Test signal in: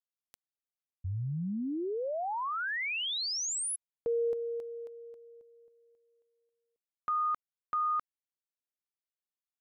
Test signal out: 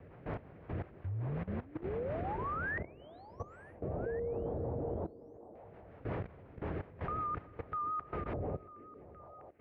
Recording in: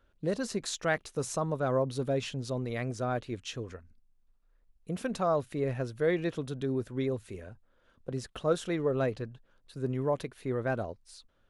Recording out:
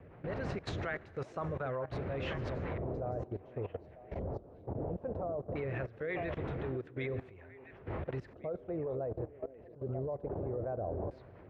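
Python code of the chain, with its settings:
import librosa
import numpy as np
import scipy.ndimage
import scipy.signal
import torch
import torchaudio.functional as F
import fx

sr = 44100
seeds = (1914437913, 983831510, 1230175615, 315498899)

p1 = fx.dmg_wind(x, sr, seeds[0], corner_hz=360.0, level_db=-35.0)
p2 = fx.peak_eq(p1, sr, hz=85.0, db=4.0, octaves=0.48)
p3 = fx.rotary(p2, sr, hz=5.5)
p4 = fx.rev_schroeder(p3, sr, rt60_s=1.6, comb_ms=33, drr_db=17.5)
p5 = fx.rider(p4, sr, range_db=5, speed_s=0.5)
p6 = p4 + F.gain(torch.from_numpy(p5), -0.5).numpy()
p7 = fx.vibrato(p6, sr, rate_hz=3.8, depth_cents=25.0)
p8 = fx.peak_eq(p7, sr, hz=240.0, db=-10.5, octaves=1.2)
p9 = fx.filter_lfo_lowpass(p8, sr, shape='square', hz=0.18, low_hz=660.0, high_hz=2200.0, q=1.7)
p10 = p9 + fx.echo_stepped(p9, sr, ms=472, hz=310.0, octaves=1.4, feedback_pct=70, wet_db=-8, dry=0)
p11 = fx.level_steps(p10, sr, step_db=17)
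p12 = scipy.signal.sosfilt(scipy.signal.butter(2, 60.0, 'highpass', fs=sr, output='sos'), p11)
y = F.gain(torch.from_numpy(p12), -2.0).numpy()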